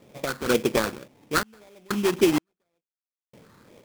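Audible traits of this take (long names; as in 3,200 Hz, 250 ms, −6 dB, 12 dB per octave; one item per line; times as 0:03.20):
sample-and-hold tremolo 2.1 Hz, depth 100%
phaser sweep stages 12, 1.9 Hz, lowest notch 590–1,700 Hz
aliases and images of a low sample rate 2,900 Hz, jitter 20%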